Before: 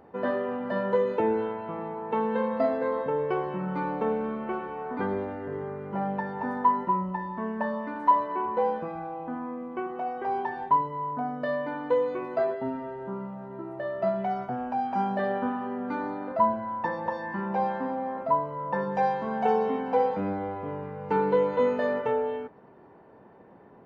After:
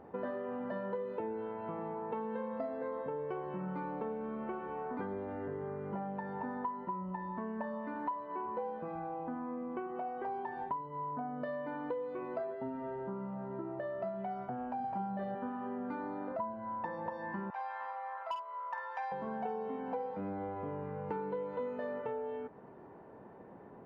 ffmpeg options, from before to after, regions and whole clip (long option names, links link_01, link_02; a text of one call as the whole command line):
ffmpeg -i in.wav -filter_complex "[0:a]asettb=1/sr,asplit=3[link_01][link_02][link_03];[link_01]atrim=end=14.804[link_04];[link_02]atrim=start=14.8:end=15.35,asetpts=PTS-STARTPTS,afade=type=in:duration=0.004:curve=qsin,afade=type=out:start_time=0.546:duration=0.004:curve=qsin,equalizer=frequency=79:width_type=o:width=2.9:gain=9.5,asplit=2[link_05][link_06];[link_06]adelay=42,volume=-3dB[link_07];[link_05][link_07]amix=inputs=2:normalize=0,atrim=end_sample=24255[link_08];[link_03]atrim=start=15.346[link_09];[link_04][link_08]acrossfade=duration=0.004:curve1=hsin:curve2=qsin[link_10];[link_10][link_09]acrossfade=duration=0.004:curve1=qsin:curve2=hsin,asettb=1/sr,asplit=3[link_11][link_12][link_13];[link_11]atrim=end=17.504[link_14];[link_12]atrim=start=17.5:end=19.12,asetpts=PTS-STARTPTS,afade=type=in:duration=0.004:curve=qsin,afade=type=out:start_time=1.616:duration=0.004:curve=qsin,highpass=frequency=920:width=0.5412,highpass=frequency=920:width=1.3066,aeval=exprs='0.0841*(abs(mod(val(0)/0.0841+3,4)-2)-1)':channel_layout=same,asplit=2[link_15][link_16];[link_16]adelay=48,volume=-5.5dB[link_17];[link_15][link_17]amix=inputs=2:normalize=0,atrim=end_sample=71442[link_18];[link_13]atrim=start=19.116[link_19];[link_14][link_18]acrossfade=duration=0.004:curve1=hsin:curve2=qsin[link_20];[link_20][link_19]acrossfade=duration=0.004:curve1=qsin:curve2=hsin,highshelf=frequency=3400:gain=-11.5,acompressor=threshold=-37dB:ratio=5" out.wav